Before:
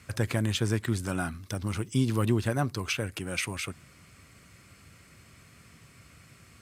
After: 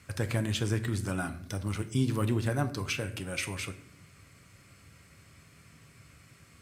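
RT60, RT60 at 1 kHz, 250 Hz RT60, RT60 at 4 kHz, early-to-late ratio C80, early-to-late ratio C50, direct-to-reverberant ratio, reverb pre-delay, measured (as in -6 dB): 0.65 s, 0.55 s, 1.0 s, 0.45 s, 16.5 dB, 13.5 dB, 7.5 dB, 6 ms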